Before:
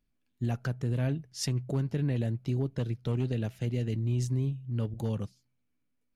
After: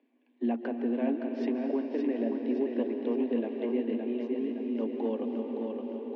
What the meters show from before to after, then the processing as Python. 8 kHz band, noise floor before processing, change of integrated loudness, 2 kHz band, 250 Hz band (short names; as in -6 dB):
under -30 dB, -77 dBFS, +0.5 dB, -1.0 dB, +6.0 dB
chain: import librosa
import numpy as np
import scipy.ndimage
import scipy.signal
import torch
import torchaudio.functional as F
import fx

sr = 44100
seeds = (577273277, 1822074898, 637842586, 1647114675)

y = scipy.signal.sosfilt(scipy.signal.butter(4, 3000.0, 'lowpass', fs=sr, output='sos'), x)
y = fx.high_shelf(y, sr, hz=2300.0, db=-12.0)
y = fx.notch(y, sr, hz=1300.0, q=5.6)
y = fx.rev_freeverb(y, sr, rt60_s=4.1, hf_ratio=0.9, predelay_ms=105, drr_db=6.0)
y = fx.rider(y, sr, range_db=3, speed_s=0.5)
y = scipy.signal.sosfilt(scipy.signal.cheby1(8, 1.0, 230.0, 'highpass', fs=sr, output='sos'), y)
y = fx.peak_eq(y, sr, hz=1400.0, db=-9.0, octaves=0.5)
y = fx.echo_feedback(y, sr, ms=567, feedback_pct=43, wet_db=-6.0)
y = fx.band_squash(y, sr, depth_pct=40)
y = F.gain(torch.from_numpy(y), 6.0).numpy()